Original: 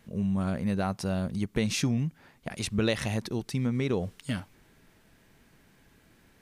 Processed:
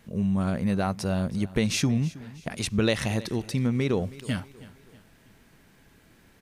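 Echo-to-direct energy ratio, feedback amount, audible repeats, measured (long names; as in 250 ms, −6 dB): −18.0 dB, 43%, 3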